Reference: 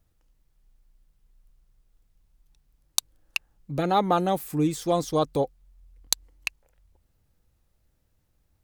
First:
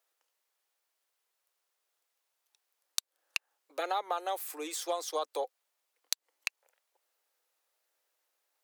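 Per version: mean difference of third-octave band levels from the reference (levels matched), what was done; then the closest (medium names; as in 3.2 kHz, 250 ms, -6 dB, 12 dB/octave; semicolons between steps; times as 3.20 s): 9.0 dB: Bessel high-pass 730 Hz, order 8; compression 6:1, threshold -29 dBFS, peak gain reduction 12 dB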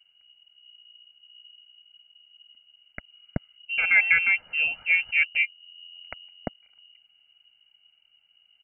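20.0 dB: comb 1.4 ms, depth 64%; frequency inversion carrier 2.9 kHz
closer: first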